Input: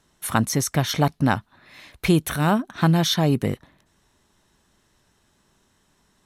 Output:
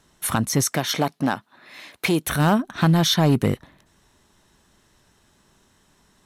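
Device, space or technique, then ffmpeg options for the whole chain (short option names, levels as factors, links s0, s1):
limiter into clipper: -filter_complex "[0:a]alimiter=limit=0.251:level=0:latency=1:release=320,asoftclip=type=hard:threshold=0.168,asettb=1/sr,asplit=3[s0][s1][s2];[s0]atrim=end=0.674[s3];[s1]atrim=start=0.67:end=2.27,asetpts=PTS-STARTPTS,afade=t=in:d=0.004:c=qsin,afade=t=out:st=1.596:d=0.004:c=qsin,highpass=230[s4];[s2]atrim=start=2.266[s5];[s3][s4]acrossfade=d=0.004:c1=hsin:c2=qsin[s6];[s6][s5]acrossfade=d=0.004:c1=qsin:c2=hsin,volume=1.58"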